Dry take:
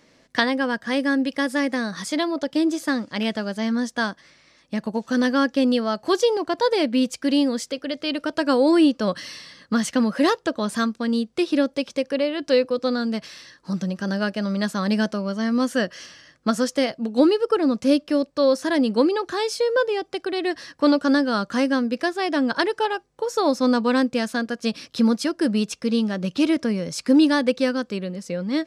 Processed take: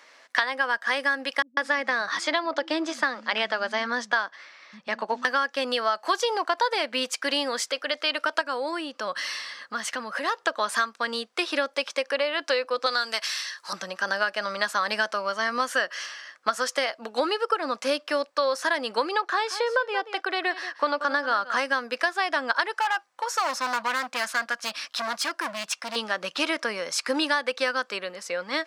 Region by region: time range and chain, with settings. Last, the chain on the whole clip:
1.42–5.25 s: low-pass 5.4 kHz + bass shelf 310 Hz +8 dB + bands offset in time lows, highs 150 ms, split 180 Hz
8.41–10.47 s: bass shelf 210 Hz +11 dB + compression 2:1, threshold -32 dBFS
12.86–13.73 s: high-pass 420 Hz 6 dB/octave + treble shelf 3.2 kHz +11.5 dB
19.21–21.57 s: treble shelf 4.9 kHz -9.5 dB + delay 181 ms -15 dB
22.74–25.96 s: peaking EQ 420 Hz -14.5 dB 0.35 oct + hard clipper -25 dBFS
whole clip: high-pass 740 Hz 12 dB/octave; peaking EQ 1.3 kHz +7.5 dB 2.1 oct; compression, threshold -23 dBFS; trim +2.5 dB

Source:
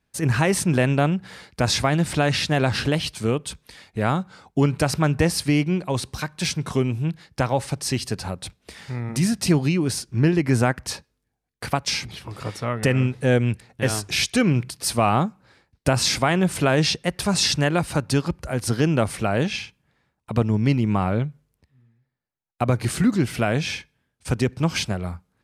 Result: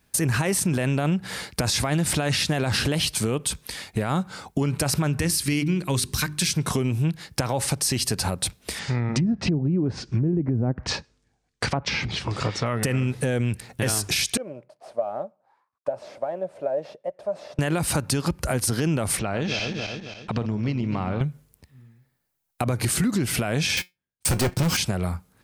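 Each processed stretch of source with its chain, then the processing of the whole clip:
5.19–6.54 s: peaking EQ 690 Hz -11.5 dB 1.1 oct + hum notches 50/100/150/200/250/300/350/400 Hz
8.79–12.66 s: low-pass 7.4 kHz 24 dB/octave + low-pass that closes with the level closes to 400 Hz, closed at -16 dBFS
14.37–17.59 s: CVSD coder 64 kbps + auto-wah 590–1200 Hz, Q 12, down, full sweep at -24.5 dBFS
19.19–21.21 s: backward echo that repeats 136 ms, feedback 60%, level -10.5 dB + low-pass 5.7 kHz 24 dB/octave + compression 2.5:1, threshold -33 dBFS
23.77–24.77 s: waveshaping leveller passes 5 + feedback comb 180 Hz, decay 0.17 s + upward expansion, over -37 dBFS
whole clip: treble shelf 7.8 kHz +12 dB; peak limiter -16.5 dBFS; compression 3:1, threshold -30 dBFS; trim +8 dB

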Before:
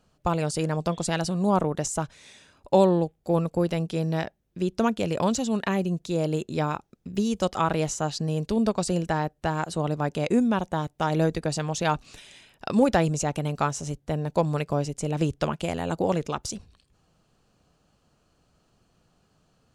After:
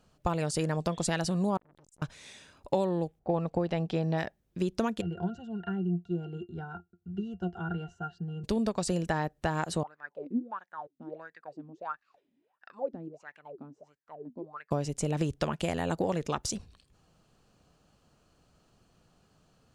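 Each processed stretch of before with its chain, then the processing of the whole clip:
1.57–2.02 s: amplifier tone stack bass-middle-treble 10-0-1 + compression 4:1, threshold -50 dBFS + transformer saturation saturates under 1.7 kHz
3.19–4.18 s: low-pass 4.4 kHz + level-controlled noise filter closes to 1.4 kHz, open at -23 dBFS + peaking EQ 760 Hz +7.5 dB 0.45 oct
5.01–8.44 s: peaking EQ 1.5 kHz +10.5 dB 0.26 oct + pitch-class resonator F, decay 0.12 s
9.83–14.71 s: peaking EQ 4.7 kHz +4 dB 0.25 oct + wah-wah 1.5 Hz 240–1800 Hz, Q 12
whole clip: dynamic bell 1.8 kHz, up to +5 dB, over -53 dBFS, Q 6.7; compression 6:1, threshold -25 dBFS

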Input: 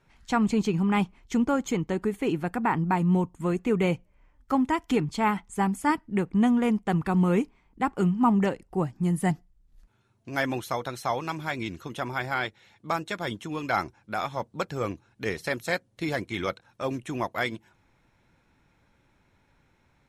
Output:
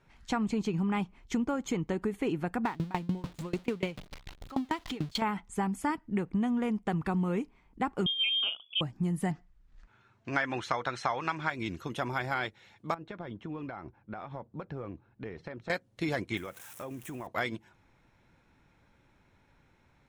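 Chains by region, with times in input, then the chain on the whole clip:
2.65–5.22 s: jump at every zero crossing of -33.5 dBFS + peaking EQ 3.8 kHz +8 dB 1.1 oct + sawtooth tremolo in dB decaying 6.8 Hz, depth 27 dB
8.06–8.81 s: companded quantiser 8-bit + frequency inversion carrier 3.4 kHz + Butterworth band-stop 1.8 kHz, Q 1.7
9.31–11.50 s: low-pass 7.9 kHz 24 dB/octave + peaking EQ 1.6 kHz +10 dB 2 oct
12.94–15.70 s: compression 12:1, threshold -33 dBFS + tape spacing loss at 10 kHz 36 dB
16.37–17.27 s: zero-crossing glitches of -30.5 dBFS + peaking EQ 4.5 kHz -13 dB 0.68 oct + compression, threshold -37 dBFS
whole clip: treble shelf 7.6 kHz -6 dB; compression, threshold -27 dBFS

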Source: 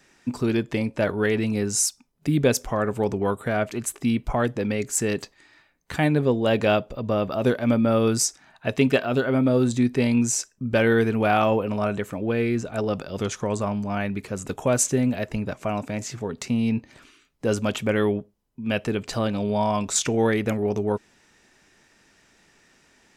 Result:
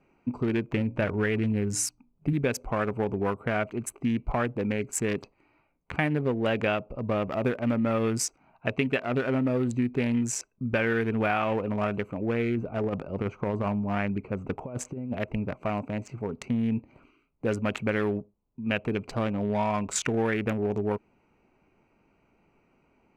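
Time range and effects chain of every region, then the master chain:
0.73–2.33 s: bass shelf 150 Hz +9 dB + hum notches 60/120/180/240/300/360 Hz
12.56–15.18 s: low-pass 2.4 kHz 6 dB/octave + compressor with a negative ratio -25 dBFS, ratio -0.5
whole clip: local Wiener filter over 25 samples; FFT filter 600 Hz 0 dB, 2.4 kHz +8 dB, 3.6 kHz -3 dB; compression, threshold -20 dBFS; trim -2 dB

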